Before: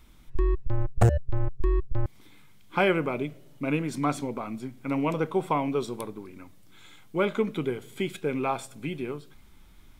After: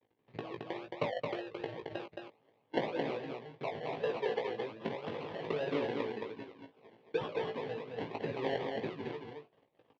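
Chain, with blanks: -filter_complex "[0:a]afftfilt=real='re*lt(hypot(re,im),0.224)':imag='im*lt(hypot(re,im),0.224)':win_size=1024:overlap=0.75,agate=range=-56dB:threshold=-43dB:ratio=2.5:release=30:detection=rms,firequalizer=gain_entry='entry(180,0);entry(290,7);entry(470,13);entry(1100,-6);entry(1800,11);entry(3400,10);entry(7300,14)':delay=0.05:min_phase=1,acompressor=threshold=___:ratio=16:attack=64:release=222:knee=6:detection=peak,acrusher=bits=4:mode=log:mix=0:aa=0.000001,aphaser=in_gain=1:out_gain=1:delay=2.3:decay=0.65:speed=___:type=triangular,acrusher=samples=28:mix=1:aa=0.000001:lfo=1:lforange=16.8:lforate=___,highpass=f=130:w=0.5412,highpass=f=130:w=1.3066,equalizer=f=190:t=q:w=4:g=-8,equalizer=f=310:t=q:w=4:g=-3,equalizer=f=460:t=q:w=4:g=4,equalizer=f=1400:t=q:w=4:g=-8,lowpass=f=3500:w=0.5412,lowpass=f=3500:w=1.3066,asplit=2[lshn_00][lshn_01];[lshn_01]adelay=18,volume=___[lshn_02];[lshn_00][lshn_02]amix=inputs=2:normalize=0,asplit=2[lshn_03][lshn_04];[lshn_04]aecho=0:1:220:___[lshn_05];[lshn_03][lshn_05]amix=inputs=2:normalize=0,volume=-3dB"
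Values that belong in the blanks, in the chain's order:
-38dB, 0.35, 1.9, -5.5dB, 0.631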